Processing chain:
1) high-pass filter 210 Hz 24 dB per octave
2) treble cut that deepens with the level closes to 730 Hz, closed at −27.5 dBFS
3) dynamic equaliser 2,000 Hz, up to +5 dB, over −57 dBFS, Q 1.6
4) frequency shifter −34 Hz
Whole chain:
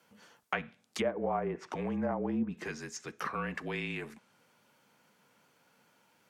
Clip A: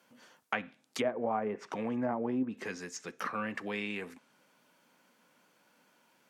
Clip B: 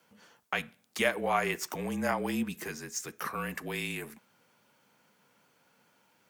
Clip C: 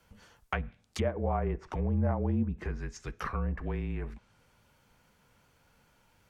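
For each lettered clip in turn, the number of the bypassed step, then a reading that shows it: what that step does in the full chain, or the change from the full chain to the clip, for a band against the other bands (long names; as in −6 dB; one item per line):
4, 125 Hz band −5.5 dB
2, 8 kHz band +7.0 dB
1, 125 Hz band +13.0 dB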